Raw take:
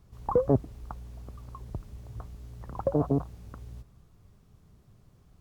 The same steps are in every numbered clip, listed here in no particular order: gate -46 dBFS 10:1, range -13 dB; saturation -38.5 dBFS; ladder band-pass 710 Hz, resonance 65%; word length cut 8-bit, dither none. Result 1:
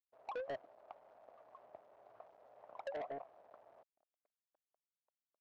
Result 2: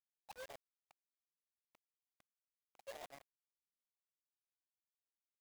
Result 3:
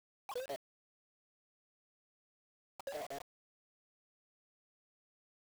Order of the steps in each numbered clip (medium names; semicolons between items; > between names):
word length cut > gate > ladder band-pass > saturation; saturation > ladder band-pass > word length cut > gate; ladder band-pass > saturation > gate > word length cut